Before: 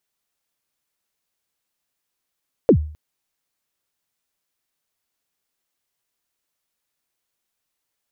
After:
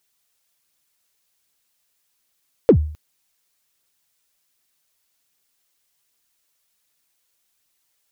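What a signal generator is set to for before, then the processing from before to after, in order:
kick drum length 0.26 s, from 550 Hz, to 76 Hz, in 83 ms, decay 0.46 s, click off, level -5.5 dB
treble shelf 2.1 kHz +7.5 dB; phaser 1.3 Hz, delay 2.3 ms, feedback 21%; in parallel at -9.5 dB: saturation -20 dBFS

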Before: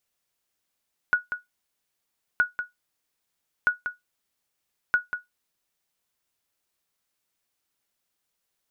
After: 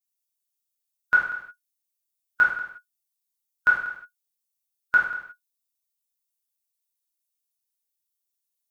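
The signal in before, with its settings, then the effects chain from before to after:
sonar ping 1.46 kHz, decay 0.16 s, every 1.27 s, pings 4, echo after 0.19 s, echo -9 dB -12 dBFS
expander on every frequency bin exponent 1.5; gated-style reverb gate 200 ms falling, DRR -6 dB

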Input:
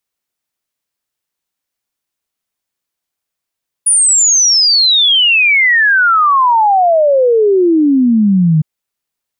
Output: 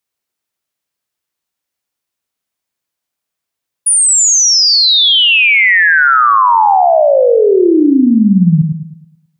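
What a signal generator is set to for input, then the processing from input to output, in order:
log sweep 9.8 kHz -> 150 Hz 4.76 s -6.5 dBFS
high-pass 47 Hz; on a send: filtered feedback delay 107 ms, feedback 41%, low-pass 4.3 kHz, level -5.5 dB

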